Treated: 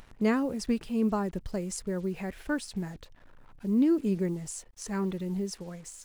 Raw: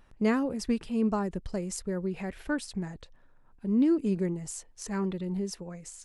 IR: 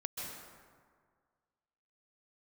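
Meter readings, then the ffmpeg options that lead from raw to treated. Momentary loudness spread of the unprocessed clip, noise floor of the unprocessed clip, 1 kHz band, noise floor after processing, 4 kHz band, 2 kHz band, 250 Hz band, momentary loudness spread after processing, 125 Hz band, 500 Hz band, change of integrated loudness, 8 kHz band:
14 LU, -58 dBFS, 0.0 dB, -55 dBFS, 0.0 dB, 0.0 dB, 0.0 dB, 14 LU, 0.0 dB, 0.0 dB, 0.0 dB, 0.0 dB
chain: -af "acompressor=mode=upward:threshold=-46dB:ratio=2.5,acrusher=bits=8:mix=0:aa=0.5"

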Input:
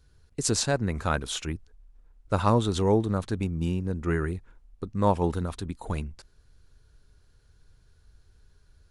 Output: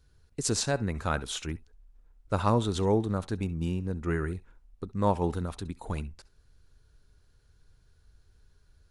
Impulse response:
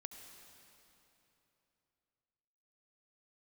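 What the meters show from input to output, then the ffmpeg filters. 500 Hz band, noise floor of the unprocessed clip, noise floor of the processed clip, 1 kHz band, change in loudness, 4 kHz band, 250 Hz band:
-2.5 dB, -61 dBFS, -64 dBFS, -2.5 dB, -2.5 dB, -2.5 dB, -2.5 dB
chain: -filter_complex "[1:a]atrim=start_sample=2205,atrim=end_sample=3087[a];[0:a][a]afir=irnorm=-1:irlink=0,volume=3dB"

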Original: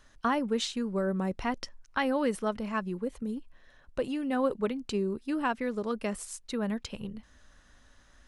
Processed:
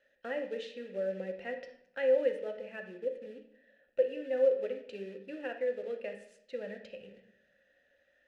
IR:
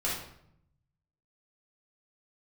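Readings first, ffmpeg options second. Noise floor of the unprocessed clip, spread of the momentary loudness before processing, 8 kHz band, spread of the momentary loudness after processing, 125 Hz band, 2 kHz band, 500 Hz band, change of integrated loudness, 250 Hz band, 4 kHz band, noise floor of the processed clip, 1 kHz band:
-60 dBFS, 10 LU, under -20 dB, 17 LU, under -15 dB, -6.5 dB, +1.5 dB, -3.0 dB, -15.5 dB, under -10 dB, -72 dBFS, -17.0 dB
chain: -filter_complex "[0:a]acrusher=bits=4:mode=log:mix=0:aa=0.000001,asplit=3[a][b][c];[a]bandpass=f=530:t=q:w=8,volume=0dB[d];[b]bandpass=f=1.84k:t=q:w=8,volume=-6dB[e];[c]bandpass=f=2.48k:t=q:w=8,volume=-9dB[f];[d][e][f]amix=inputs=3:normalize=0,asplit=2[g][h];[1:a]atrim=start_sample=2205,lowpass=5.6k[i];[h][i]afir=irnorm=-1:irlink=0,volume=-9.5dB[j];[g][j]amix=inputs=2:normalize=0,volume=1.5dB"

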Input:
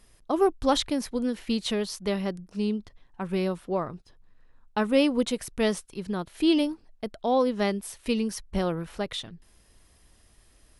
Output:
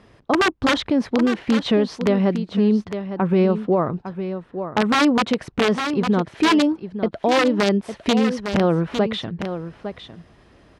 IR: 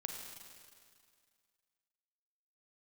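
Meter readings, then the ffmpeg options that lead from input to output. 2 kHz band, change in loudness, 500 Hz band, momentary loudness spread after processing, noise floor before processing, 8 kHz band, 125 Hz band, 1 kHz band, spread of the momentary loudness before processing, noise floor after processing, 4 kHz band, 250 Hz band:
+12.5 dB, +7.5 dB, +6.5 dB, 11 LU, -60 dBFS, +2.0 dB, +11.0 dB, +8.5 dB, 11 LU, -53 dBFS, +6.5 dB, +8.5 dB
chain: -filter_complex "[0:a]highshelf=f=2.1k:g=-11.5,asplit=2[a][b];[b]acompressor=threshold=-33dB:ratio=6,volume=1dB[c];[a][c]amix=inputs=2:normalize=0,aeval=exprs='(mod(5.62*val(0)+1,2)-1)/5.62':c=same,highpass=100,lowpass=4.1k,aecho=1:1:856:0.266,alimiter=level_in=18dB:limit=-1dB:release=50:level=0:latency=1,volume=-9dB"

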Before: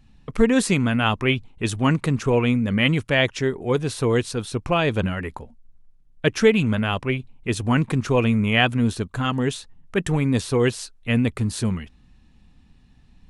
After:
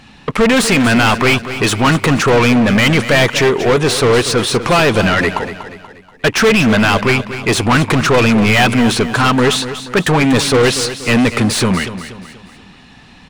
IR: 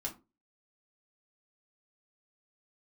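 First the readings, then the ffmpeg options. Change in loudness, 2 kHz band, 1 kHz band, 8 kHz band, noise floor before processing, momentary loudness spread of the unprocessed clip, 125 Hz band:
+9.5 dB, +11.5 dB, +12.5 dB, +13.5 dB, -54 dBFS, 9 LU, +6.0 dB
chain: -filter_complex "[0:a]asplit=2[a][b];[b]highpass=f=720:p=1,volume=32dB,asoftclip=type=tanh:threshold=-3.5dB[c];[a][c]amix=inputs=2:normalize=0,lowpass=f=3.7k:p=1,volume=-6dB,aecho=1:1:240|480|720|960:0.251|0.111|0.0486|0.0214"

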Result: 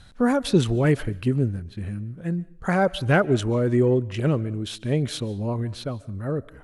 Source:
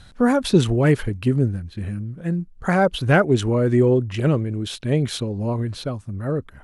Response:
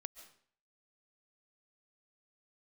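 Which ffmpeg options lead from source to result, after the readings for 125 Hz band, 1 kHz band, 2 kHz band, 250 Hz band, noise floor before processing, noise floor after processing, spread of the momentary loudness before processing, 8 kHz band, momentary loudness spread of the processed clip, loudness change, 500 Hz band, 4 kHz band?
-3.0 dB, -3.0 dB, -3.0 dB, -3.0 dB, -46 dBFS, -48 dBFS, 12 LU, -3.0 dB, 12 LU, -3.0 dB, -3.0 dB, -3.0 dB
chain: -filter_complex "[0:a]asplit=2[a][b];[1:a]atrim=start_sample=2205[c];[b][c]afir=irnorm=-1:irlink=0,volume=-3dB[d];[a][d]amix=inputs=2:normalize=0,volume=-6dB"

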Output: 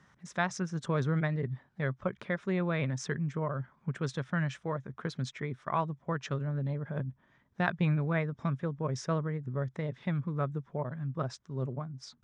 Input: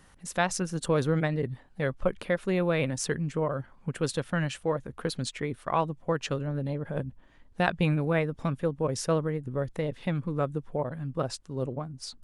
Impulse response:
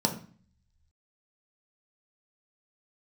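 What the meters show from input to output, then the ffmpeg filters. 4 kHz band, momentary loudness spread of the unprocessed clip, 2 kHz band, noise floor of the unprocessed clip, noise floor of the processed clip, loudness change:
-8.0 dB, 8 LU, -3.0 dB, -57 dBFS, -69 dBFS, -4.0 dB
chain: -af "highpass=120,equalizer=f=130:t=q:w=4:g=5,equalizer=f=300:t=q:w=4:g=-7,equalizer=f=500:t=q:w=4:g=-8,equalizer=f=780:t=q:w=4:g=-5,equalizer=f=2.8k:t=q:w=4:g=-9,equalizer=f=4.4k:t=q:w=4:g=-10,lowpass=f=5.8k:w=0.5412,lowpass=f=5.8k:w=1.3066,volume=-1.5dB"

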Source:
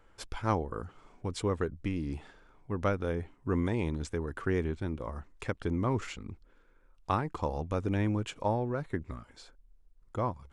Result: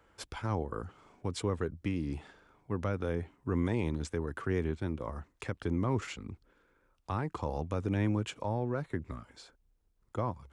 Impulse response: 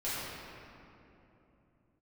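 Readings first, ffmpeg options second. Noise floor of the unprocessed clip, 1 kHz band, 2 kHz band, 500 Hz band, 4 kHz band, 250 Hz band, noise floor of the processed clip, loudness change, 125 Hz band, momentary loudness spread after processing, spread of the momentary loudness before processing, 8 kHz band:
-62 dBFS, -4.0 dB, -2.0 dB, -2.0 dB, -0.5 dB, -1.0 dB, -73 dBFS, -1.5 dB, -0.5 dB, 13 LU, 13 LU, 0.0 dB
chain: -filter_complex "[0:a]highpass=54,acrossover=split=170[a][b];[b]alimiter=limit=-24dB:level=0:latency=1:release=38[c];[a][c]amix=inputs=2:normalize=0"

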